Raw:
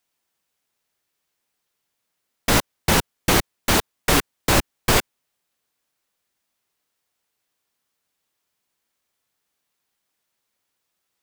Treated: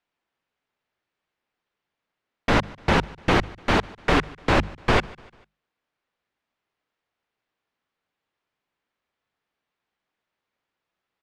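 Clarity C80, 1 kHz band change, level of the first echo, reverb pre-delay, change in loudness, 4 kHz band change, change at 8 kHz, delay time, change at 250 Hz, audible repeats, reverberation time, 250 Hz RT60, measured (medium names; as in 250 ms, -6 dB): no reverb, 0.0 dB, -23.0 dB, no reverb, -2.5 dB, -6.5 dB, -18.0 dB, 148 ms, 0.0 dB, 2, no reverb, no reverb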